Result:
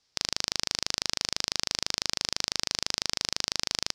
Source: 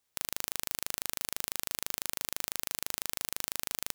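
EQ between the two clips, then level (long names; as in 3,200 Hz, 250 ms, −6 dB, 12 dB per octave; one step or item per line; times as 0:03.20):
low-pass with resonance 5,100 Hz, resonance Q 4
low-shelf EQ 450 Hz +4 dB
+4.0 dB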